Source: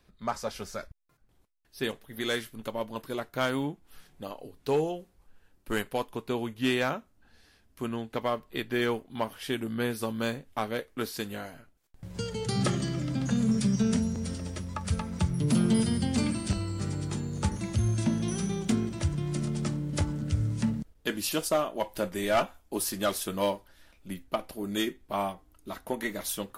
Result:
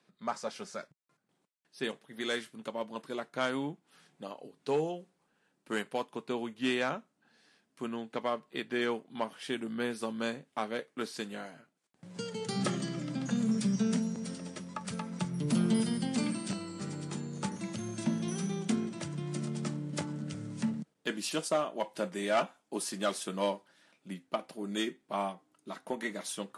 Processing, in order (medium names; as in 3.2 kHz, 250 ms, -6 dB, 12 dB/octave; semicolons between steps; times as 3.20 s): elliptic band-pass 160–9200 Hz, stop band 40 dB; trim -3 dB